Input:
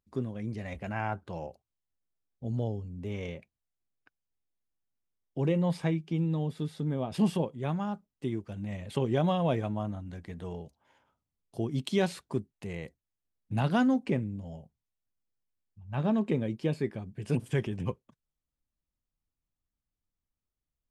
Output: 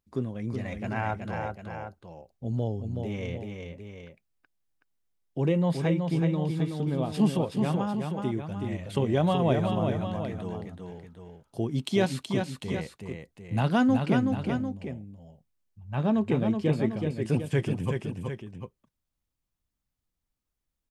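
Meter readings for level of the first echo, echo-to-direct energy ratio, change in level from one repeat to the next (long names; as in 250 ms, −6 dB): −5.0 dB, −4.0 dB, −5.0 dB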